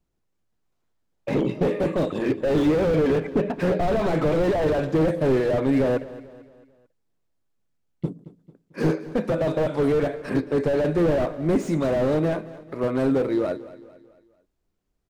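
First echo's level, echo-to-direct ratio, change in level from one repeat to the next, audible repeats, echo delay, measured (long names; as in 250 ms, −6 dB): −17.0 dB, −16.0 dB, −7.0 dB, 3, 222 ms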